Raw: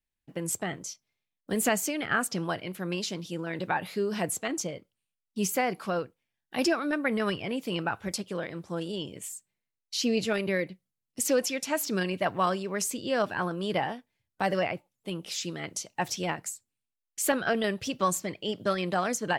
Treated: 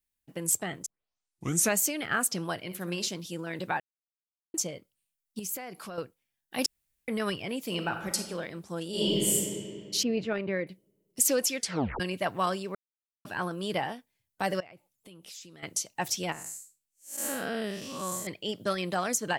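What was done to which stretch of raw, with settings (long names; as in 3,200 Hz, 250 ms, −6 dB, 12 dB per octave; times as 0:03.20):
0:00.86: tape start 0.91 s
0:02.59–0:03.08: flutter between parallel walls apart 10.9 metres, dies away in 0.31 s
0:03.80–0:04.54: silence
0:05.39–0:05.98: downward compressor 3 to 1, threshold −38 dBFS
0:06.66–0:07.08: fill with room tone
0:07.65–0:08.30: thrown reverb, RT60 1 s, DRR 5 dB
0:08.89–0:09.33: thrown reverb, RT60 2.4 s, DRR −11.5 dB
0:10.03–0:10.67: low-pass filter 2,000 Hz
0:11.57: tape stop 0.43 s
0:12.75–0:13.25: silence
0:14.60–0:15.63: downward compressor, threshold −46 dBFS
0:16.32–0:18.27: spectrum smeared in time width 192 ms
whole clip: high-shelf EQ 6,000 Hz +12 dB; level −2.5 dB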